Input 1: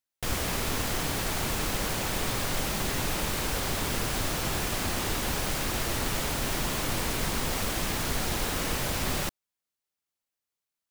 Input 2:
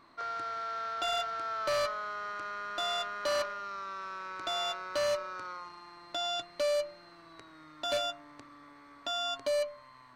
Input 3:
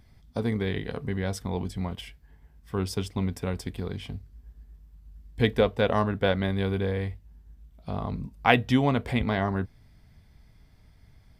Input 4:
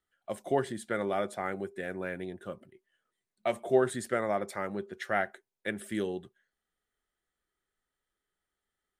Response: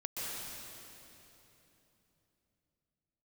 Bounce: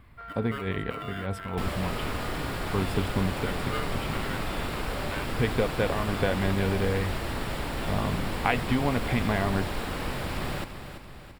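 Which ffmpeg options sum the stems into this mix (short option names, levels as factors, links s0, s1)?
-filter_complex "[0:a]lowpass=f=2600:p=1,adelay=1350,volume=0.891,asplit=2[s0][s1];[s1]volume=0.316[s2];[1:a]acompressor=threshold=0.0178:ratio=6,volume=0.531[s3];[2:a]acrusher=bits=10:mix=0:aa=0.000001,volume=1.33[s4];[3:a]aeval=exprs='val(0)*sgn(sin(2*PI*830*n/s))':c=same,volume=0.316,asplit=2[s5][s6];[s6]apad=whole_len=502552[s7];[s4][s7]sidechaincompress=threshold=0.00562:ratio=8:attack=7.8:release=130[s8];[s3][s8][s5]amix=inputs=3:normalize=0,highshelf=f=3500:t=q:w=1.5:g=-8.5,acompressor=threshold=0.0708:ratio=4,volume=1[s9];[s2]aecho=0:1:337|674|1011|1348|1685|2022|2359|2696:1|0.52|0.27|0.141|0.0731|0.038|0.0198|0.0103[s10];[s0][s9][s10]amix=inputs=3:normalize=0,equalizer=f=6200:t=o:w=0.22:g=-12.5"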